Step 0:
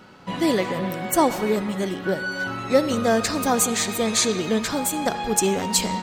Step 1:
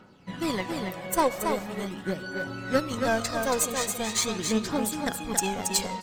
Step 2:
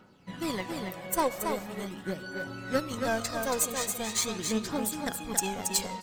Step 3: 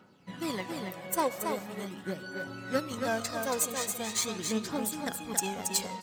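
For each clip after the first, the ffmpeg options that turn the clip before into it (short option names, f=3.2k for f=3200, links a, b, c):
-af "aeval=exprs='0.531*(cos(1*acos(clip(val(0)/0.531,-1,1)))-cos(1*PI/2))+0.106*(cos(3*acos(clip(val(0)/0.531,-1,1)))-cos(3*PI/2))+0.0335*(cos(5*acos(clip(val(0)/0.531,-1,1)))-cos(5*PI/2))+0.0237*(cos(7*acos(clip(val(0)/0.531,-1,1)))-cos(7*PI/2))':c=same,aphaser=in_gain=1:out_gain=1:delay=2:decay=0.51:speed=0.42:type=triangular,aecho=1:1:277:0.531,volume=-2.5dB"
-af "highshelf=f=9.4k:g=6,volume=-4dB"
-af "highpass=93,volume=-1.5dB"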